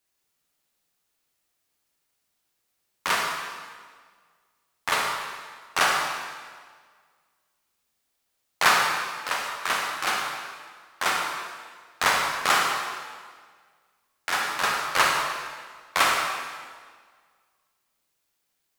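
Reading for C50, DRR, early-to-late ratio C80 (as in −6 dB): 1.5 dB, 0.0 dB, 3.0 dB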